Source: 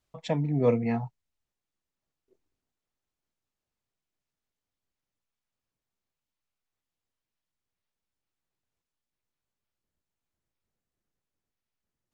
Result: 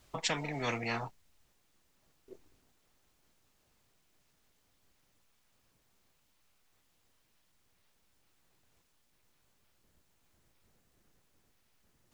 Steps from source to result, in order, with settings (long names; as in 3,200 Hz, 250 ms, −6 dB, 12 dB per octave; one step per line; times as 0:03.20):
every bin compressed towards the loudest bin 4 to 1
level −5 dB